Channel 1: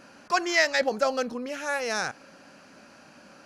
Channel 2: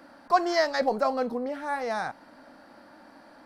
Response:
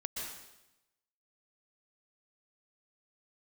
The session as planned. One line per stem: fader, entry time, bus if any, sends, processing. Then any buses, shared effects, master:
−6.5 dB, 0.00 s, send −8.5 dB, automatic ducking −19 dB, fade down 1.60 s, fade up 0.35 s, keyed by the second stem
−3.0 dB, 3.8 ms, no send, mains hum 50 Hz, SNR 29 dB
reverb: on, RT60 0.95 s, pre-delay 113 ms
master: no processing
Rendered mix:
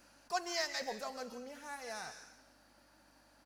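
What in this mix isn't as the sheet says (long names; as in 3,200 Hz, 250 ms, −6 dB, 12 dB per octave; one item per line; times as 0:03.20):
stem 2: polarity flipped
master: extra first-order pre-emphasis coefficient 0.8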